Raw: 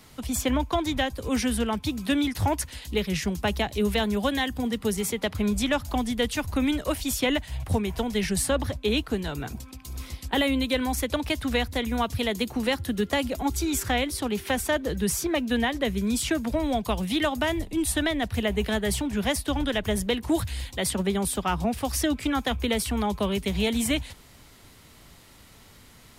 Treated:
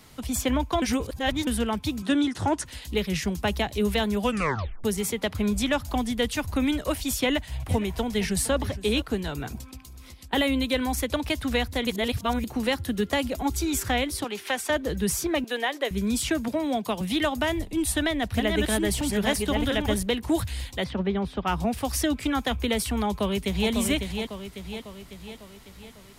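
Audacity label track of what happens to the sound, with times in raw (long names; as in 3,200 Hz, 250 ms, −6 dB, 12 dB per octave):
0.820000	1.470000	reverse
2.020000	2.660000	loudspeaker in its box 120–9,100 Hz, peaks and dips at 350 Hz +6 dB, 1,400 Hz +4 dB, 2,300 Hz −6 dB, 4,700 Hz −4 dB
4.210000	4.210000	tape stop 0.63 s
7.220000	9.020000	single-tap delay 463 ms −17 dB
9.790000	10.330000	downward compressor, threshold −42 dBFS
11.870000	12.440000	reverse
14.240000	14.700000	meter weighting curve A
15.440000	15.910000	high-pass filter 360 Hz 24 dB per octave
16.480000	17.010000	Chebyshev high-pass filter 200 Hz
17.610000	20.030000	delay that plays each chunk backwards 700 ms, level −3.5 dB
20.840000	21.470000	high-frequency loss of the air 270 metres
23.070000	23.710000	delay throw 550 ms, feedback 55%, level −6 dB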